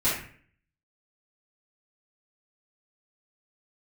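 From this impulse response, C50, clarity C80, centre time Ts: 2.0 dB, 7.0 dB, 47 ms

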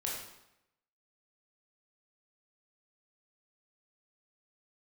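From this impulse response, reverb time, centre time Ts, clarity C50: 0.85 s, 55 ms, 1.5 dB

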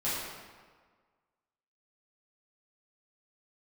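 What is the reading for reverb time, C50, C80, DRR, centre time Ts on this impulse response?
1.6 s, −1.5 dB, 1.0 dB, −11.0 dB, 103 ms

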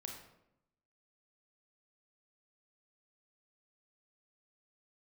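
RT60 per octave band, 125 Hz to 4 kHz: 1.0, 1.0, 0.90, 0.80, 0.65, 0.50 seconds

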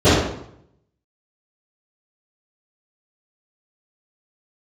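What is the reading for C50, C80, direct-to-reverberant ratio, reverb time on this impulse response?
−0.5 dB, 3.0 dB, −20.0 dB, 0.70 s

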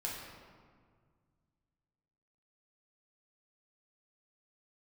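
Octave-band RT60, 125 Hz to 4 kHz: 2.9, 2.4, 1.9, 1.8, 1.4, 1.0 seconds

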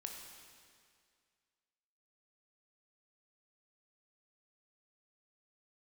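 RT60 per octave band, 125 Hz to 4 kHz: 2.1, 2.1, 2.1, 2.1, 2.1, 2.0 seconds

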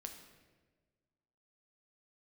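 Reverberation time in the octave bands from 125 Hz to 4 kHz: 1.8, 1.7, 1.6, 1.2, 1.2, 0.95 seconds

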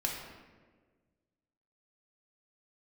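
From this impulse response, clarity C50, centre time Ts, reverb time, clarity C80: 2.5 dB, 58 ms, 1.5 s, 4.5 dB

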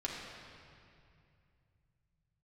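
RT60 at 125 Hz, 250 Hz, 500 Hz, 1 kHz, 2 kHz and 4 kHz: 4.1, 3.2, 2.5, 2.4, 2.3, 2.0 seconds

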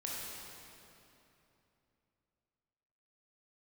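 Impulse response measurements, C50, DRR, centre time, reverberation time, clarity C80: −2.5 dB, −5.0 dB, 169 ms, 3.0 s, −1.0 dB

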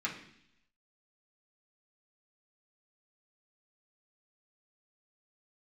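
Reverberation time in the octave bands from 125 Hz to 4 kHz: 0.90, 0.85, 0.70, 0.65, 0.85, 0.90 seconds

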